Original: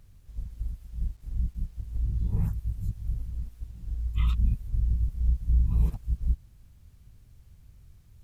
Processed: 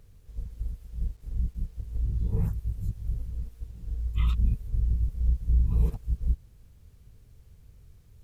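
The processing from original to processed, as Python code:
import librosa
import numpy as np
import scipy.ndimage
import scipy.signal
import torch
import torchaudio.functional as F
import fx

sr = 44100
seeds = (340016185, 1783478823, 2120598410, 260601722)

y = fx.peak_eq(x, sr, hz=450.0, db=9.0, octaves=0.45)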